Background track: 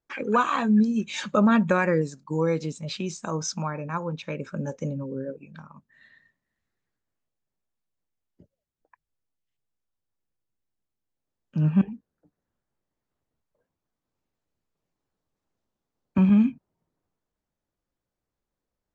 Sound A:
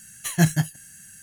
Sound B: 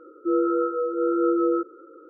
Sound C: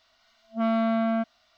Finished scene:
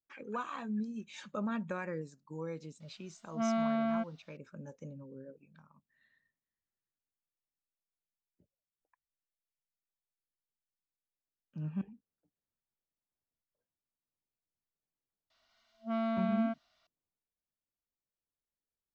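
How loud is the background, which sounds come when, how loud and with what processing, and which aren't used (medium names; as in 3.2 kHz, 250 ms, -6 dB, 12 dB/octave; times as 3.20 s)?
background track -16.5 dB
2.80 s: add C -7 dB
15.30 s: add C -9 dB
not used: A, B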